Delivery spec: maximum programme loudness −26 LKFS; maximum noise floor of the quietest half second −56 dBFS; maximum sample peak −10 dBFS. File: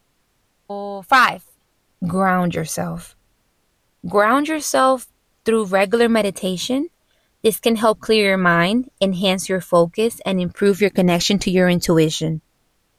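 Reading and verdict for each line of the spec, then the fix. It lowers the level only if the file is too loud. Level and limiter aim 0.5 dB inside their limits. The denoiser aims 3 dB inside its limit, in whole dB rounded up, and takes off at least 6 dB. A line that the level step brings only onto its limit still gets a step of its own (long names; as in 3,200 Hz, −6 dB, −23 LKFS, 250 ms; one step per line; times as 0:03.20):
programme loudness −18.0 LKFS: out of spec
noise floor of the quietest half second −65 dBFS: in spec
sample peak −4.0 dBFS: out of spec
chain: level −8.5 dB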